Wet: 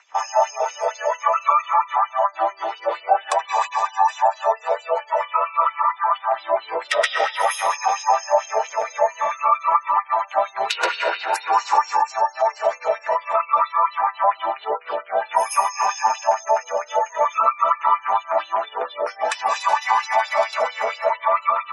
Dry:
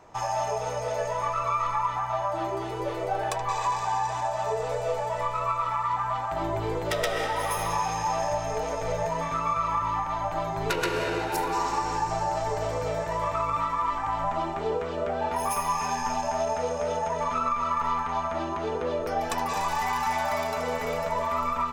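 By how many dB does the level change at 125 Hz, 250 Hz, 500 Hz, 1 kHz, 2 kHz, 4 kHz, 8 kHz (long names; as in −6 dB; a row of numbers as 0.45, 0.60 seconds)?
below −25 dB, below −10 dB, +6.0 dB, +8.0 dB, +7.5 dB, +6.5 dB, +4.0 dB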